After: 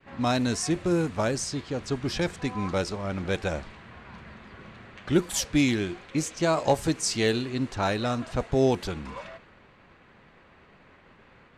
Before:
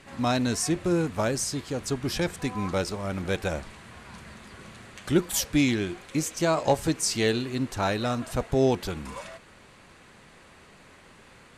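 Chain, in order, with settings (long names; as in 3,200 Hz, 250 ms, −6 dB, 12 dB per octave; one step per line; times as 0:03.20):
low-pass that shuts in the quiet parts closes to 2,600 Hz, open at −19.5 dBFS
downward expander −50 dBFS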